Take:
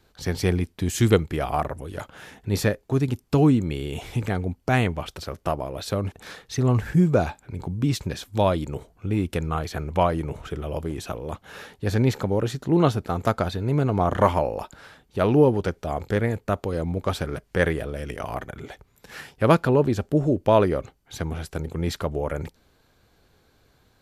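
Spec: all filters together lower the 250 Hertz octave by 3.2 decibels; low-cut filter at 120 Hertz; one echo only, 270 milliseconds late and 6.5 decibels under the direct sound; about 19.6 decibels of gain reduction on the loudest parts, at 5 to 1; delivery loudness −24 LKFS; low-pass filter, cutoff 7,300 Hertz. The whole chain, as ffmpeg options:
ffmpeg -i in.wav -af "highpass=120,lowpass=7300,equalizer=frequency=250:width_type=o:gain=-4,acompressor=threshold=-36dB:ratio=5,aecho=1:1:270:0.473,volume=15.5dB" out.wav

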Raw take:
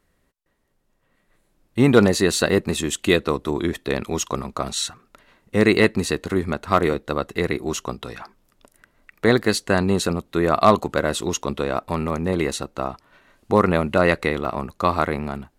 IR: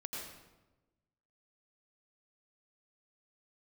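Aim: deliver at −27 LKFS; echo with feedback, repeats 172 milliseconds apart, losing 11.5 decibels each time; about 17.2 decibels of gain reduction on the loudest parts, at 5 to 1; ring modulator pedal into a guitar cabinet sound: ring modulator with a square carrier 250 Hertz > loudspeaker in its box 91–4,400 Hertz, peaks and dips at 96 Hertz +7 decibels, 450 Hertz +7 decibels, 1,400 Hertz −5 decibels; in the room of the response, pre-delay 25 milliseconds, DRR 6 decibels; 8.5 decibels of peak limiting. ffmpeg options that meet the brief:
-filter_complex "[0:a]acompressor=threshold=-30dB:ratio=5,alimiter=limit=-23dB:level=0:latency=1,aecho=1:1:172|344|516:0.266|0.0718|0.0194,asplit=2[link_01][link_02];[1:a]atrim=start_sample=2205,adelay=25[link_03];[link_02][link_03]afir=irnorm=-1:irlink=0,volume=-5.5dB[link_04];[link_01][link_04]amix=inputs=2:normalize=0,aeval=exprs='val(0)*sgn(sin(2*PI*250*n/s))':channel_layout=same,highpass=91,equalizer=frequency=96:width_type=q:width=4:gain=7,equalizer=frequency=450:width_type=q:width=4:gain=7,equalizer=frequency=1400:width_type=q:width=4:gain=-5,lowpass=frequency=4400:width=0.5412,lowpass=frequency=4400:width=1.3066,volume=7.5dB"

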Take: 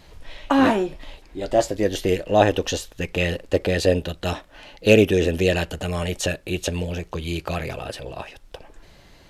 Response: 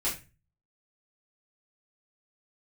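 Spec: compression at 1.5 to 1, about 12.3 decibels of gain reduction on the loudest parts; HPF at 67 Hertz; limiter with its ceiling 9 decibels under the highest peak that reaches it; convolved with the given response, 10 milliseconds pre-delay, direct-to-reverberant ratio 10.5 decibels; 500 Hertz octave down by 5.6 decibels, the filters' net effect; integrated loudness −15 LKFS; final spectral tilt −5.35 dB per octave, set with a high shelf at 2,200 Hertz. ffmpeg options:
-filter_complex "[0:a]highpass=67,equalizer=frequency=500:width_type=o:gain=-6.5,highshelf=frequency=2200:gain=-6.5,acompressor=threshold=-48dB:ratio=1.5,alimiter=level_in=1dB:limit=-24dB:level=0:latency=1,volume=-1dB,asplit=2[link_01][link_02];[1:a]atrim=start_sample=2205,adelay=10[link_03];[link_02][link_03]afir=irnorm=-1:irlink=0,volume=-17dB[link_04];[link_01][link_04]amix=inputs=2:normalize=0,volume=23.5dB"

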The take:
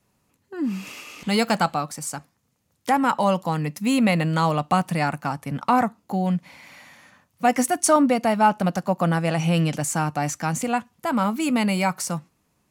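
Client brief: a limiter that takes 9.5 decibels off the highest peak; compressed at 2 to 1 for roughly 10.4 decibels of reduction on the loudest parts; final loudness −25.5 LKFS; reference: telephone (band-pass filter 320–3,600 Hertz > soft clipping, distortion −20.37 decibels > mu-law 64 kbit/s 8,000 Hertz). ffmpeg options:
ffmpeg -i in.wav -af "acompressor=threshold=-33dB:ratio=2,alimiter=level_in=1dB:limit=-24dB:level=0:latency=1,volume=-1dB,highpass=320,lowpass=3600,asoftclip=threshold=-26.5dB,volume=14dB" -ar 8000 -c:a pcm_mulaw out.wav

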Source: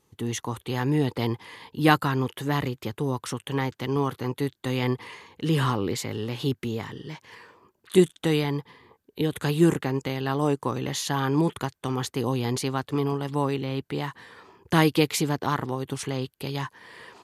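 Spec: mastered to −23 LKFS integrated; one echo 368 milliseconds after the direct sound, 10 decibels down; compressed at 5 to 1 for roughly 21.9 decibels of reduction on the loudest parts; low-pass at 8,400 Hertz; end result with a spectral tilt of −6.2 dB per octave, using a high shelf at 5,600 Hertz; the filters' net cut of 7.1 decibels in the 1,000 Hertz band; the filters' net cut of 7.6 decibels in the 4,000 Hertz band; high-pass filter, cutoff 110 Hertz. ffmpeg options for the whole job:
ffmpeg -i in.wav -af "highpass=110,lowpass=8400,equalizer=frequency=1000:width_type=o:gain=-8.5,equalizer=frequency=4000:width_type=o:gain=-8.5,highshelf=frequency=5600:gain=-3.5,acompressor=threshold=-39dB:ratio=5,aecho=1:1:368:0.316,volume=20dB" out.wav

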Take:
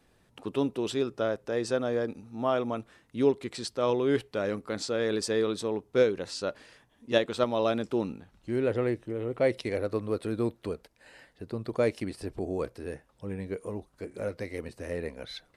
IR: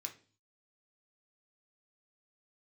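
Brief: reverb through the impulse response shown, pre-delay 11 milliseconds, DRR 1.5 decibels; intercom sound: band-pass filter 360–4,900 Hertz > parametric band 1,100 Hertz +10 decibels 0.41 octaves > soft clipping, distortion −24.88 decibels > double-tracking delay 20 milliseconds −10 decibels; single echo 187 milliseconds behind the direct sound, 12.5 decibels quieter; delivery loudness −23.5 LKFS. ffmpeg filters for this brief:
-filter_complex "[0:a]aecho=1:1:187:0.237,asplit=2[link_01][link_02];[1:a]atrim=start_sample=2205,adelay=11[link_03];[link_02][link_03]afir=irnorm=-1:irlink=0,volume=1.5dB[link_04];[link_01][link_04]amix=inputs=2:normalize=0,highpass=360,lowpass=4900,equalizer=frequency=1100:width_type=o:width=0.41:gain=10,asoftclip=threshold=-12dB,asplit=2[link_05][link_06];[link_06]adelay=20,volume=-10dB[link_07];[link_05][link_07]amix=inputs=2:normalize=0,volume=6.5dB"

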